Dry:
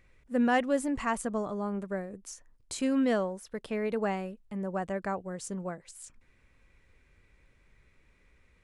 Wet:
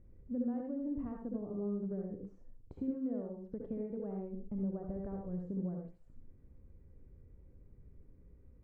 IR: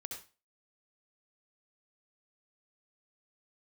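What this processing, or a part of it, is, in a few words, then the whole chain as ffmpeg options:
television next door: -filter_complex "[0:a]asettb=1/sr,asplit=3[link_01][link_02][link_03];[link_01]atrim=end=3.974[link_04];[link_02]atrim=start=3.97:end=5.39,asetpts=PTS-STARTPTS,afade=type=in:duration=0.004:curve=qsin,afade=type=out:start_time=1.416:duration=0.004:curve=qsin,asubboost=boost=10.5:cutoff=99[link_05];[link_03]atrim=start=5.386[link_06];[link_04][link_05]acrossfade=duration=0.004:curve1=hsin:curve2=qsin[link_07];[link_07][link_06]acrossfade=duration=0.004:curve1=qsin:curve2=hsin,acompressor=threshold=-41dB:ratio=5,lowpass=350[link_08];[1:a]atrim=start_sample=2205[link_09];[link_08][link_09]afir=irnorm=-1:irlink=0,volume=10dB"

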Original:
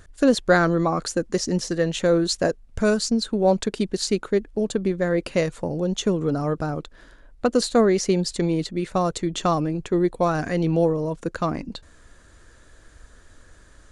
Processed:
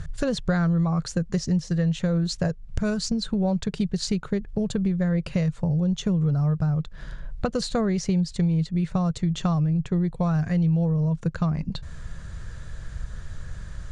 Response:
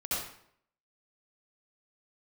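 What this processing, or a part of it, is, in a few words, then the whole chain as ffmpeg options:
jukebox: -af "lowpass=7200,lowshelf=frequency=210:width_type=q:width=3:gain=9.5,acompressor=threshold=-30dB:ratio=4,volume=6dB"

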